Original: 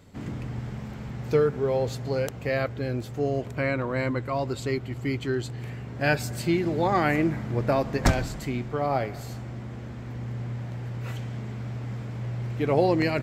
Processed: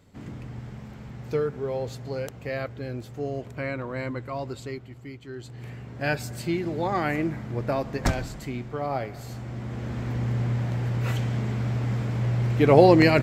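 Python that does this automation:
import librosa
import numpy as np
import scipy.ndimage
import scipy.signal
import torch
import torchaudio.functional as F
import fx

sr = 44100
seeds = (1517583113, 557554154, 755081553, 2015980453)

y = fx.gain(x, sr, db=fx.line((4.5, -4.5), (5.22, -14.0), (5.66, -3.0), (9.13, -3.0), (9.98, 7.0)))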